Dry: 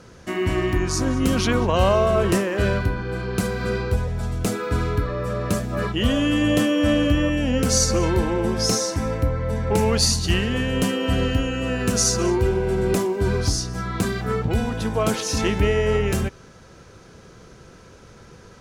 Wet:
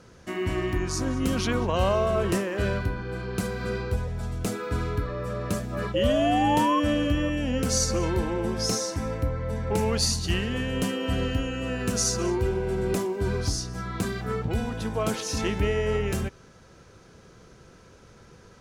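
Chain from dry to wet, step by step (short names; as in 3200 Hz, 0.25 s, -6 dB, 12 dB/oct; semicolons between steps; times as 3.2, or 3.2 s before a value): painted sound rise, 5.94–6.8, 520–1100 Hz -19 dBFS; gain -5.5 dB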